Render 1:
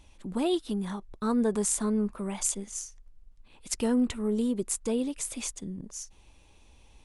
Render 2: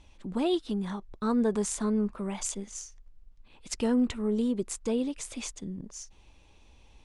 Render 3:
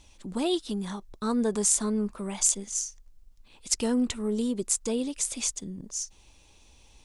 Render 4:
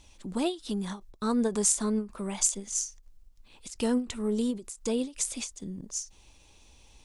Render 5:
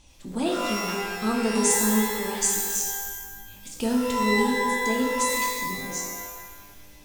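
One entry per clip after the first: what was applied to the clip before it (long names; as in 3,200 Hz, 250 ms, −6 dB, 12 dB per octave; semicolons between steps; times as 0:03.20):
low-pass filter 6,500 Hz 12 dB per octave
bass and treble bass −1 dB, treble +12 dB
every ending faded ahead of time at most 200 dB per second
reverb with rising layers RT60 1.4 s, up +12 semitones, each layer −2 dB, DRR −1 dB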